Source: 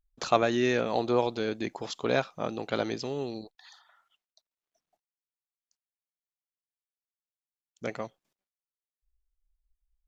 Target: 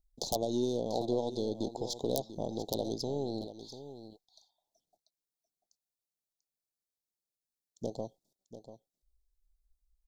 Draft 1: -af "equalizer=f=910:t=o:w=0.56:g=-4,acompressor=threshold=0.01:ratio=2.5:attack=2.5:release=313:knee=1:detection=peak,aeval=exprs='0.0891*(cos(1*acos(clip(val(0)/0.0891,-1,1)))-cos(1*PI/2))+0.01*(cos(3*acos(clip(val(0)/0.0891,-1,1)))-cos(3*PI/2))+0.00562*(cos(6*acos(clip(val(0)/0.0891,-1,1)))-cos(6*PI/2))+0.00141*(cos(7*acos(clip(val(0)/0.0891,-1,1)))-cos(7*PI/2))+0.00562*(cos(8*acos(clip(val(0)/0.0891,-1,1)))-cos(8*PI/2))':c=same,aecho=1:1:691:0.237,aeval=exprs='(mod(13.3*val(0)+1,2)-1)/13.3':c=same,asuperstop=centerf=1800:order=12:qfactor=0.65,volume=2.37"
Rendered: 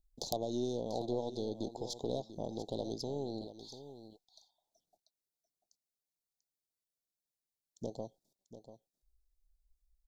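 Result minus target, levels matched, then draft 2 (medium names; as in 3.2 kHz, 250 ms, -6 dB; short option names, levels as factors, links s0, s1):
compression: peak gain reduction +3.5 dB
-af "equalizer=f=910:t=o:w=0.56:g=-4,acompressor=threshold=0.02:ratio=2.5:attack=2.5:release=313:knee=1:detection=peak,aeval=exprs='0.0891*(cos(1*acos(clip(val(0)/0.0891,-1,1)))-cos(1*PI/2))+0.01*(cos(3*acos(clip(val(0)/0.0891,-1,1)))-cos(3*PI/2))+0.00562*(cos(6*acos(clip(val(0)/0.0891,-1,1)))-cos(6*PI/2))+0.00141*(cos(7*acos(clip(val(0)/0.0891,-1,1)))-cos(7*PI/2))+0.00562*(cos(8*acos(clip(val(0)/0.0891,-1,1)))-cos(8*PI/2))':c=same,aecho=1:1:691:0.237,aeval=exprs='(mod(13.3*val(0)+1,2)-1)/13.3':c=same,asuperstop=centerf=1800:order=12:qfactor=0.65,volume=2.37"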